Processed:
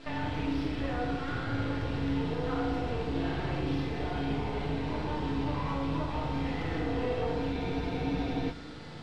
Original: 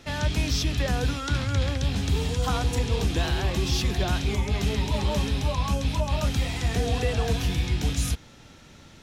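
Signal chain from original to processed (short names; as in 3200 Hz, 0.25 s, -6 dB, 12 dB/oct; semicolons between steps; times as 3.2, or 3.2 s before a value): HPF 130 Hz 12 dB/oct; compressor 12:1, threshold -36 dBFS, peak gain reduction 14 dB; half-wave rectifier; band noise 3400–8800 Hz -51 dBFS; air absorption 410 m; FDN reverb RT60 1.8 s, low-frequency decay 0.95×, high-frequency decay 0.6×, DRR -6 dB; spectral freeze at 7.55, 0.96 s; gain +5 dB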